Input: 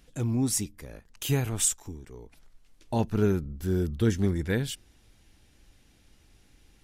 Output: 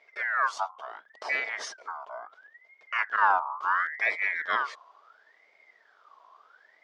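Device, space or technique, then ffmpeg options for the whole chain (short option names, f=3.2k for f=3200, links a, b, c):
voice changer toy: -af "aeval=exprs='val(0)*sin(2*PI*1600*n/s+1600*0.35/0.72*sin(2*PI*0.72*n/s))':c=same,highpass=440,equalizer=f=440:t=q:w=4:g=7,equalizer=f=640:t=q:w=4:g=10,equalizer=f=930:t=q:w=4:g=3,equalizer=f=1.8k:t=q:w=4:g=-4,equalizer=f=2.6k:t=q:w=4:g=-8,equalizer=f=4.1k:t=q:w=4:g=-8,lowpass=f=4.3k:w=0.5412,lowpass=f=4.3k:w=1.3066,volume=3.5dB"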